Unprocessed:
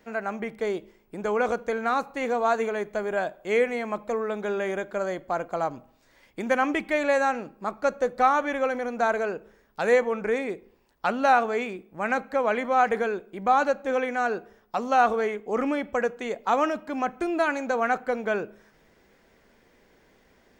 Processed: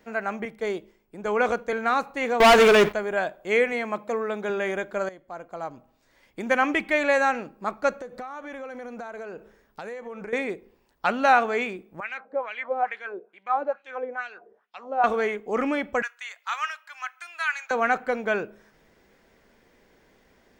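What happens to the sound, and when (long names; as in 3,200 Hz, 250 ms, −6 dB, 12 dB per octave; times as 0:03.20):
0:00.45–0:01.73: multiband upward and downward expander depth 40%
0:02.40–0:02.93: leveller curve on the samples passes 5
0:03.72–0:04.50: high-pass filter 100 Hz
0:05.09–0:06.61: fade in, from −15.5 dB
0:07.96–0:10.33: downward compressor 12 to 1, threshold −33 dBFS
0:12.00–0:15.04: LFO wah 2.3 Hz 410–3,100 Hz, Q 2.6
0:16.02–0:17.71: high-pass filter 1,300 Hz 24 dB per octave
whole clip: dynamic equaliser 2,300 Hz, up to +5 dB, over −37 dBFS, Q 0.77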